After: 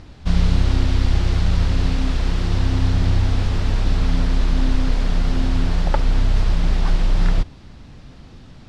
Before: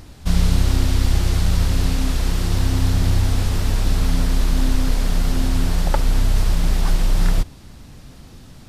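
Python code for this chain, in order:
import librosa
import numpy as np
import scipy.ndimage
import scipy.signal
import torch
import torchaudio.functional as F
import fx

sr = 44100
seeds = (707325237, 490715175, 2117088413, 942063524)

y = scipy.signal.sosfilt(scipy.signal.butter(2, 4400.0, 'lowpass', fs=sr, output='sos'), x)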